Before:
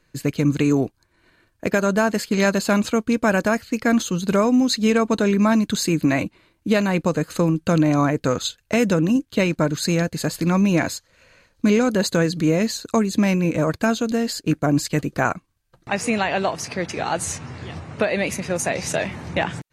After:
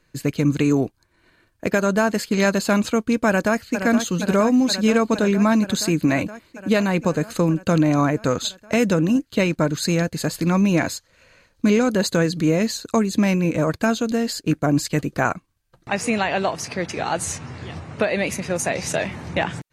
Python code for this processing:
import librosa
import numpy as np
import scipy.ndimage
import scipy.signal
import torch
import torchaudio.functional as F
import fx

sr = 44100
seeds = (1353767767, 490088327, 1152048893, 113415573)

y = fx.echo_throw(x, sr, start_s=3.27, length_s=0.51, ms=470, feedback_pct=80, wet_db=-8.0)